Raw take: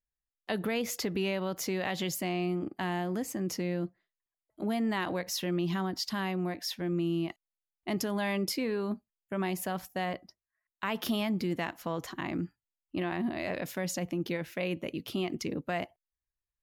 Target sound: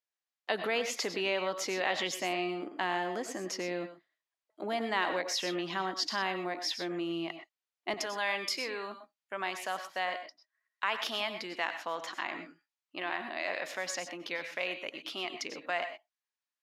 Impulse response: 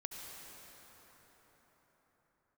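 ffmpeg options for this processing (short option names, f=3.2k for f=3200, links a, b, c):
-filter_complex "[0:a]asetnsamples=n=441:p=0,asendcmd='7.94 highpass f 770',highpass=480,lowpass=6k[a];[1:a]atrim=start_sample=2205,atrim=end_sample=4410,asetrate=33075,aresample=44100[b];[a][b]afir=irnorm=-1:irlink=0,volume=7dB"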